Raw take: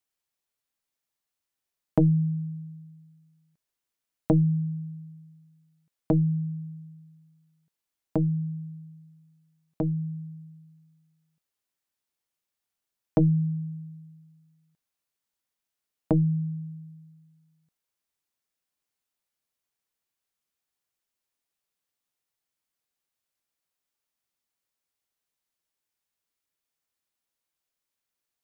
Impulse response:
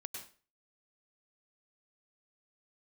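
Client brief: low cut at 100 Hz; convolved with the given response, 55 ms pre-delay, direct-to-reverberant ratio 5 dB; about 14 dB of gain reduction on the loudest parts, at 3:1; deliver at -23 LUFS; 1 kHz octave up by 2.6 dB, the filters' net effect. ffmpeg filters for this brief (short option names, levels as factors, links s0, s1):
-filter_complex "[0:a]highpass=100,equalizer=f=1000:t=o:g=3.5,acompressor=threshold=0.0141:ratio=3,asplit=2[s0][s1];[1:a]atrim=start_sample=2205,adelay=55[s2];[s1][s2]afir=irnorm=-1:irlink=0,volume=0.75[s3];[s0][s3]amix=inputs=2:normalize=0,volume=6.31"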